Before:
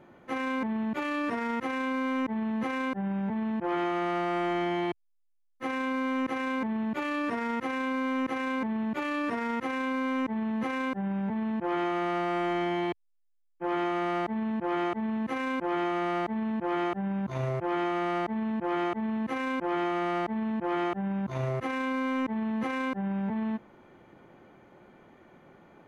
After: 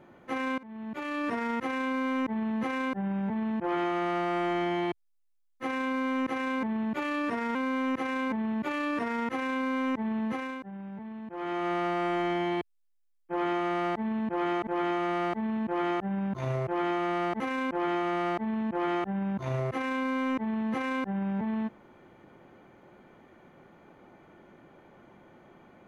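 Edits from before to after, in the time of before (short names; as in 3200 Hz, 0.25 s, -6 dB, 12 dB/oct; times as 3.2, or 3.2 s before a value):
0.58–1.31 fade in, from -24 dB
7.55–7.86 cut
10.55–12.01 dip -10 dB, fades 0.38 s
14.98–15.6 cut
18.33–19.29 cut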